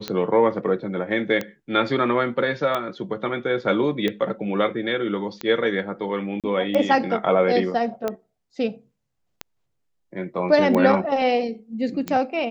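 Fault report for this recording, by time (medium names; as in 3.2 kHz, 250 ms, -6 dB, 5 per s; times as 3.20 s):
tick 45 rpm -12 dBFS
6.40–6.44 s: dropout 37 ms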